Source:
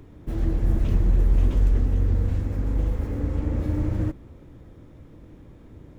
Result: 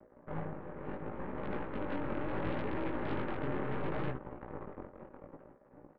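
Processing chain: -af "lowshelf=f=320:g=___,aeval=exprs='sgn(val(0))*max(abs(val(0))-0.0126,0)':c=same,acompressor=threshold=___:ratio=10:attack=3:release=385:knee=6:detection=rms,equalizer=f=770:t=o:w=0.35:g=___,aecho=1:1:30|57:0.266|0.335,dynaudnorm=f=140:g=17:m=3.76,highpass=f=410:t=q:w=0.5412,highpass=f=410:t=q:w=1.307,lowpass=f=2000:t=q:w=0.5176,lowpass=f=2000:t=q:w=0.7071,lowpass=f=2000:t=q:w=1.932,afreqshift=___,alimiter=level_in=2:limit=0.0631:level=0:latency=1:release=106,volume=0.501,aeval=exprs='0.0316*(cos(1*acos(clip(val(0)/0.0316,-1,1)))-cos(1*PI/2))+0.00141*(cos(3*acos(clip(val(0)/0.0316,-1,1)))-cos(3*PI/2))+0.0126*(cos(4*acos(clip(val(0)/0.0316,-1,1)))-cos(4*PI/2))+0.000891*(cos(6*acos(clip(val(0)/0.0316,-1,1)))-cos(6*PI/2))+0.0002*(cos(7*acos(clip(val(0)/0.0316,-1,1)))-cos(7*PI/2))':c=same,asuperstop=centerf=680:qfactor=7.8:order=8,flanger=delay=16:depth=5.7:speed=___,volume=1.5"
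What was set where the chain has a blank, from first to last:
6.5, 0.1, 9, -170, 0.71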